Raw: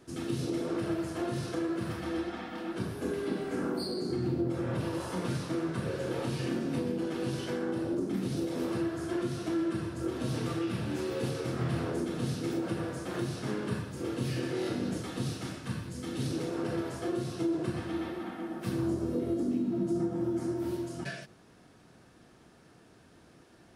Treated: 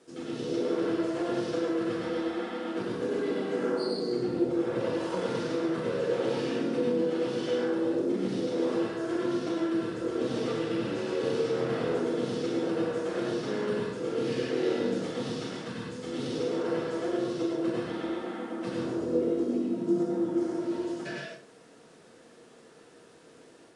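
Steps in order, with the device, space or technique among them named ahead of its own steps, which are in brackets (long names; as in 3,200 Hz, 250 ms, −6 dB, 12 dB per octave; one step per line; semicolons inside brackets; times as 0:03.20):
filmed off a television (band-pass filter 210–6,700 Hz; parametric band 480 Hz +10.5 dB 0.31 octaves; convolution reverb RT60 0.40 s, pre-delay 92 ms, DRR −1 dB; white noise bed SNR 33 dB; automatic gain control gain up to 3.5 dB; level −4 dB; AAC 96 kbit/s 22,050 Hz)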